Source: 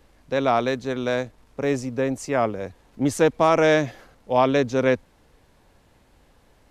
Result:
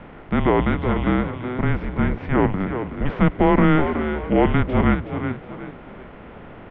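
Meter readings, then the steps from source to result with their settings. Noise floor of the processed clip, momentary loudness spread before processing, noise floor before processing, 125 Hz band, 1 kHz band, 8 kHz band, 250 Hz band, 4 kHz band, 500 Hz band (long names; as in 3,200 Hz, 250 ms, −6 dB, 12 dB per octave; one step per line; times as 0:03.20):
−41 dBFS, 10 LU, −59 dBFS, +9.5 dB, +0.5 dB, below −35 dB, +6.0 dB, −4.0 dB, −2.0 dB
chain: compressor on every frequency bin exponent 0.6
single-sideband voice off tune −300 Hz 230–3,100 Hz
echo with shifted repeats 371 ms, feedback 34%, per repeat +54 Hz, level −8.5 dB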